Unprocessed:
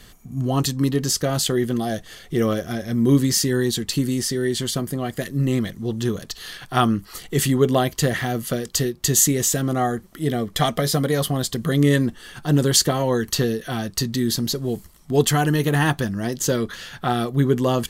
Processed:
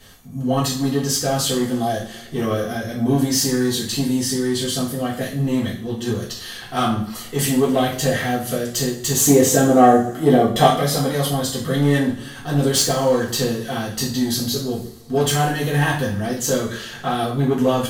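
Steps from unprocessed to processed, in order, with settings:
soft clipping −13.5 dBFS, distortion −15 dB
0:09.26–0:10.67: parametric band 450 Hz +10 dB 3 octaves
coupled-rooms reverb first 0.44 s, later 2.1 s, from −22 dB, DRR −7.5 dB
level −5 dB

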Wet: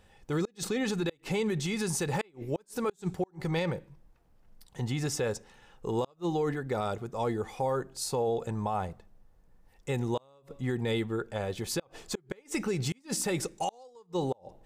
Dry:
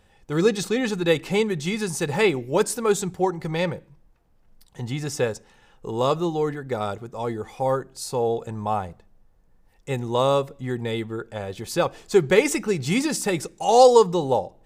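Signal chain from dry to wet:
gate with flip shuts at −11 dBFS, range −38 dB
brickwall limiter −20 dBFS, peak gain reduction 10 dB
level −1.5 dB

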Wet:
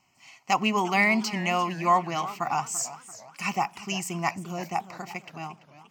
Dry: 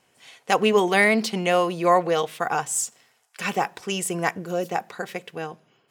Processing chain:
phaser with its sweep stopped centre 2,400 Hz, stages 8
feedback echo with a swinging delay time 344 ms, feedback 42%, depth 199 cents, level −15.5 dB

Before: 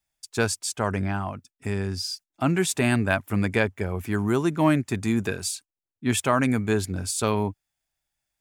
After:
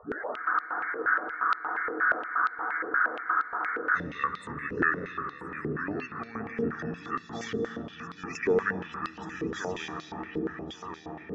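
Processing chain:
turntable start at the beginning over 1.30 s
flat-topped bell 980 Hz −11.5 dB 1.3 octaves
echo ahead of the sound 222 ms −15 dB
spectral peaks only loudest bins 64
on a send: feedback echo with a low-pass in the loop 842 ms, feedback 48%, low-pass 2,000 Hz, level −4 dB
on the sum: comb and all-pass reverb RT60 3.8 s, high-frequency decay 0.45×, pre-delay 80 ms, DRR 4.5 dB
in parallel at +2.5 dB: downward compressor, threshold −29 dBFS, peak gain reduction 13.5 dB
on the sum: wrong playback speed 45 rpm record played at 33 rpm
frozen spectrum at 0:00.39, 3.58 s
band-pass on a step sequencer 8.5 Hz 450–4,100 Hz
level +4 dB

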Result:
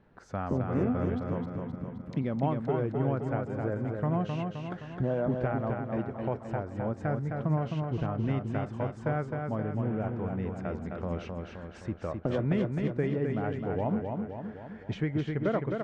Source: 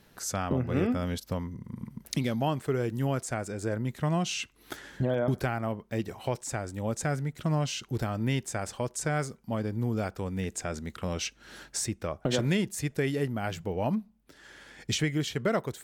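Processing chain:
0:09.64–0:10.13: variable-slope delta modulation 16 kbit/s
low-pass filter 1,400 Hz 12 dB per octave
repeating echo 261 ms, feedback 56%, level −4.5 dB
level −1.5 dB

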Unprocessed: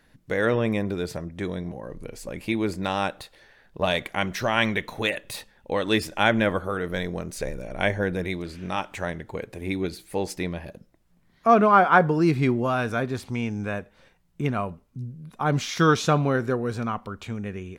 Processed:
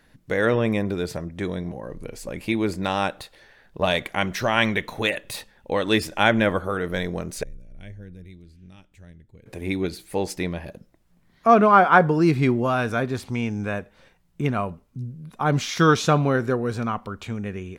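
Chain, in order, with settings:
0:07.43–0:09.46: guitar amp tone stack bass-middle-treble 10-0-1
level +2 dB

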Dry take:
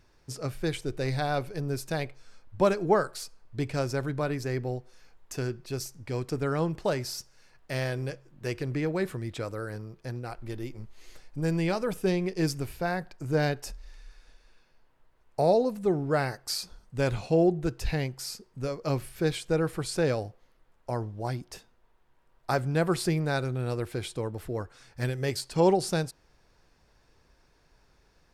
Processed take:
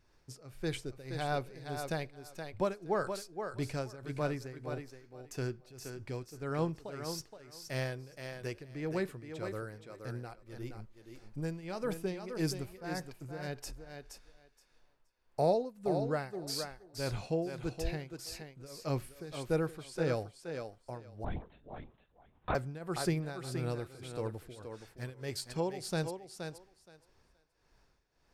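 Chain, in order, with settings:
shaped tremolo triangle 1.7 Hz, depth 90%
feedback echo with a high-pass in the loop 472 ms, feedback 16%, high-pass 190 Hz, level −6.5 dB
0:21.24–0:22.55: linear-prediction vocoder at 8 kHz whisper
level −4 dB

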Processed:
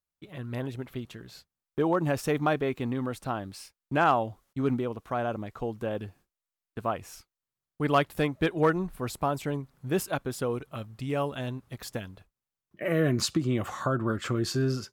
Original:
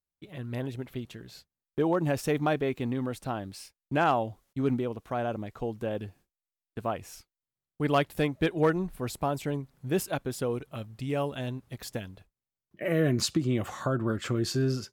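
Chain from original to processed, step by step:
parametric band 1,200 Hz +4.5 dB 0.78 octaves

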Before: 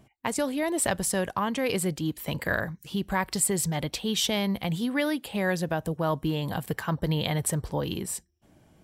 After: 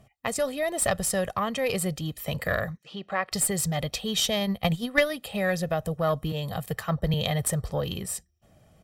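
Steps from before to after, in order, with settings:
comb filter 1.6 ms, depth 60%
0:04.40–0:05.10: transient designer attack +11 dB, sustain −11 dB
tube saturation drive 11 dB, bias 0.4
0:02.77–0:03.32: band-pass filter 310–3,500 Hz
0:06.32–0:07.14: multiband upward and downward expander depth 70%
level +1 dB

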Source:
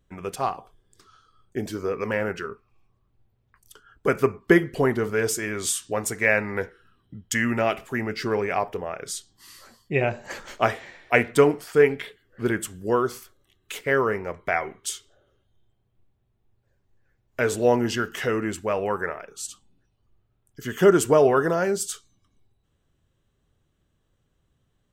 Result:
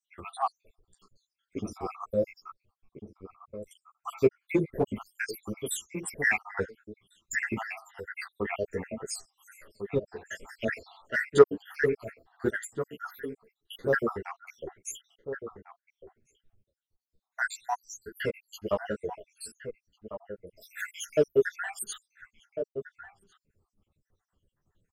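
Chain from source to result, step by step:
time-frequency cells dropped at random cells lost 82%
in parallel at −9 dB: gain into a clipping stage and back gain 20.5 dB
0:10.45–0:11.24: on the sum: transient designer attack −3 dB, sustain +4 dB
slap from a distant wall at 240 metres, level −10 dB
string-ensemble chorus

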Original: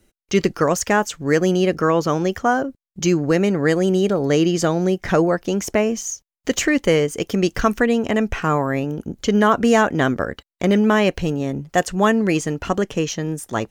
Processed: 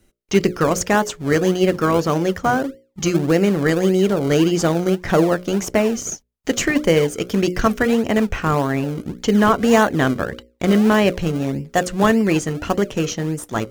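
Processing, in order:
mains-hum notches 60/120/180/240/300/360/420/480/540/600 Hz
in parallel at −10.5 dB: sample-and-hold swept by an LFO 34×, swing 100% 1.7 Hz

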